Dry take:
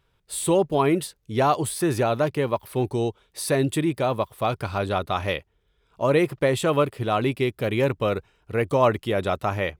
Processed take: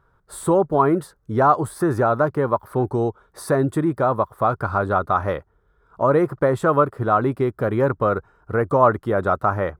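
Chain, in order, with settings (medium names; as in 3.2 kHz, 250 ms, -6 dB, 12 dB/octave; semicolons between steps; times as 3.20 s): resonant high shelf 1.9 kHz -11.5 dB, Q 3; in parallel at -0.5 dB: compression, threshold -29 dBFS, peak gain reduction 16.5 dB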